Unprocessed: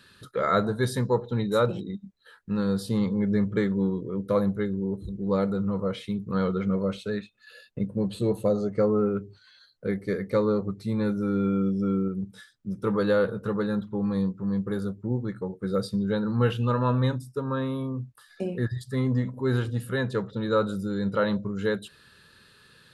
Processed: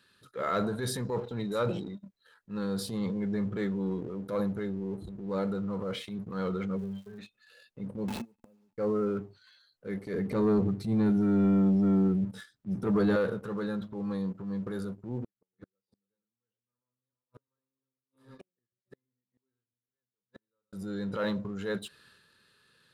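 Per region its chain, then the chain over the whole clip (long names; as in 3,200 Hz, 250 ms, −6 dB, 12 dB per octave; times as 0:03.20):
0:06.76–0:07.18: resonances in every octave G, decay 0.24 s + surface crackle 590 per second −54 dBFS
0:08.08–0:08.78: hold until the input has moved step −32.5 dBFS + gate with flip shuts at −25 dBFS, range −38 dB + hollow resonant body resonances 230/870/2,600 Hz, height 14 dB, ringing for 70 ms
0:10.14–0:13.16: high-pass filter 54 Hz 6 dB per octave + low-shelf EQ 480 Hz +11.5 dB + notch filter 520 Hz, Q 9.1
0:15.23–0:20.73: feedback delay that plays each chunk backwards 225 ms, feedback 61%, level −9 dB + gate with flip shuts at −23 dBFS, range −34 dB + expander for the loud parts 2.5 to 1, over −49 dBFS
whole clip: low-shelf EQ 110 Hz −8.5 dB; leveller curve on the samples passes 1; transient designer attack −7 dB, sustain +6 dB; level −8 dB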